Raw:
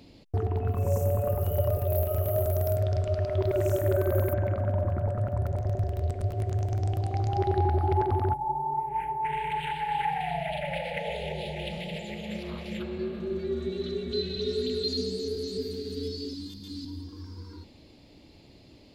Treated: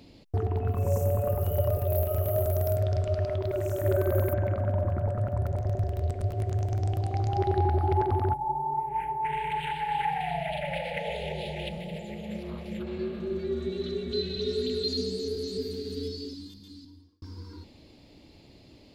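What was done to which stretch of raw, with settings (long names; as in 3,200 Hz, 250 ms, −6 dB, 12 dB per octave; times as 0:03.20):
0:03.29–0:03.85: downward compressor, threshold −25 dBFS
0:11.69–0:12.87: parametric band 3,600 Hz −7.5 dB 2.8 octaves
0:15.97–0:17.22: fade out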